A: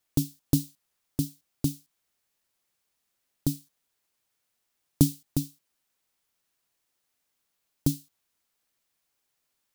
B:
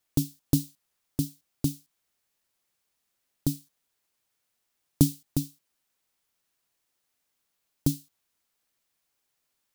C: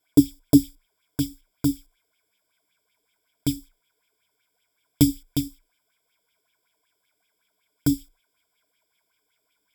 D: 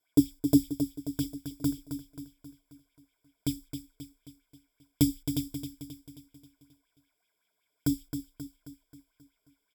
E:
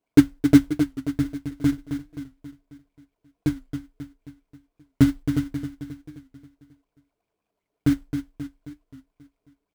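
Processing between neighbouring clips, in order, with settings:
no audible change
rippled EQ curve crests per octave 1.7, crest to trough 17 dB; sweeping bell 5.3 Hz 340–3100 Hz +16 dB; trim -1 dB
feedback delay 267 ms, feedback 51%, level -8.5 dB; trim -6.5 dB
median filter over 25 samples; in parallel at -6 dB: sample-rate reducer 1.8 kHz, jitter 20%; on the sum: warped record 45 rpm, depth 100 cents; trim +5 dB

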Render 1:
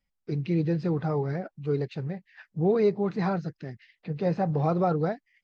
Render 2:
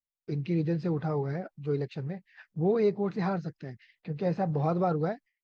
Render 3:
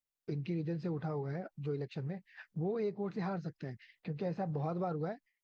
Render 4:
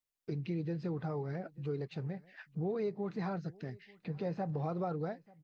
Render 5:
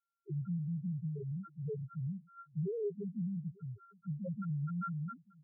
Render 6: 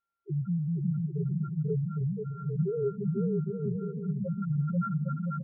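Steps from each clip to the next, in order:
gate with hold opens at -50 dBFS; trim -2.5 dB
compression 2.5:1, threshold -37 dBFS, peak gain reduction 11 dB
delay 887 ms -24 dB
sorted samples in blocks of 32 samples; loudest bins only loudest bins 1; trim +6.5 dB
distance through air 350 m; bouncing-ball echo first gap 490 ms, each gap 0.65×, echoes 5; trim +7 dB

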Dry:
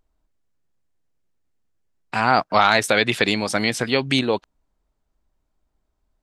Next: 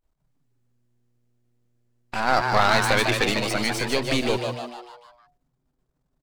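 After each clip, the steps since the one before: partial rectifier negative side -12 dB; on a send: frequency-shifting echo 150 ms, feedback 51%, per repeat +120 Hz, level -5 dB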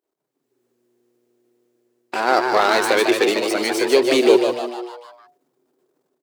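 level rider gain up to 9.5 dB; resonant high-pass 370 Hz, resonance Q 4.1; treble shelf 10 kHz +4.5 dB; trim -2.5 dB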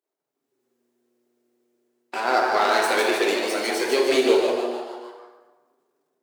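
high-pass 300 Hz 6 dB/octave; plate-style reverb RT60 1.3 s, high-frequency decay 0.65×, DRR 0 dB; trim -5.5 dB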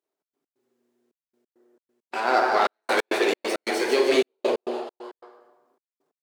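time-frequency box 1.46–1.82 s, 250–2000 Hz +9 dB; treble shelf 5.9 kHz -5.5 dB; trance gate "xx.x.xxxxx..x." 135 bpm -60 dB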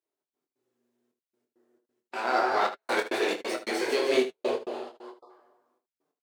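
spectral selection erased 5.10–5.30 s, 1.3–3.4 kHz; flange 1.5 Hz, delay 5.9 ms, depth 3.5 ms, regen -41%; on a send: early reflections 24 ms -6 dB, 76 ms -12.5 dB; on the sum: trim -1.5 dB

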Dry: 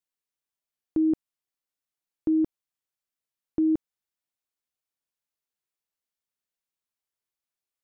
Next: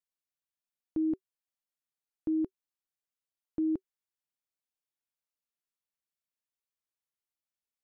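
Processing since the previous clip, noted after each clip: band-stop 380 Hz, Q 12; trim -6.5 dB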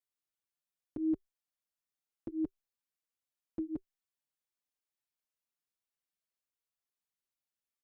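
endless flanger 5.5 ms +2.2 Hz; trim +1 dB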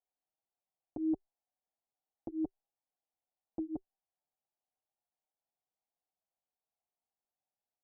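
resonant low-pass 760 Hz, resonance Q 4.9; trim -2.5 dB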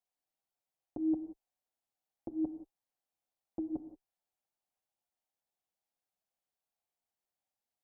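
gated-style reverb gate 200 ms flat, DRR 9.5 dB

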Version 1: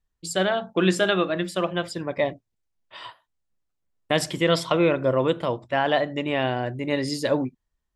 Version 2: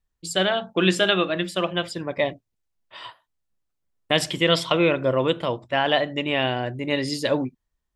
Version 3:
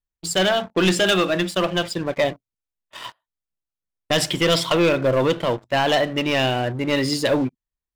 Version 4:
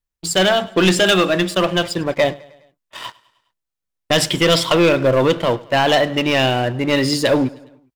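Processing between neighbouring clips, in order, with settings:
dynamic bell 3 kHz, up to +7 dB, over -42 dBFS, Q 1.5
waveshaping leveller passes 3; trim -6 dB
feedback delay 103 ms, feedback 55%, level -22.5 dB; trim +4 dB

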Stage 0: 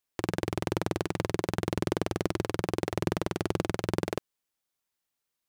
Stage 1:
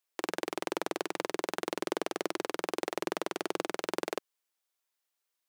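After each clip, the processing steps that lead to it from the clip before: Bessel high-pass 410 Hz, order 4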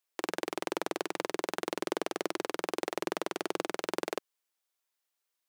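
no audible change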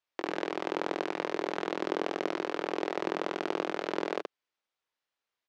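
distance through air 160 m; on a send: early reflections 20 ms -10 dB, 75 ms -6 dB; on the sum: trim +1.5 dB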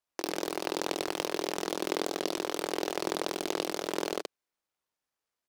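delay time shaken by noise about 3.4 kHz, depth 0.1 ms

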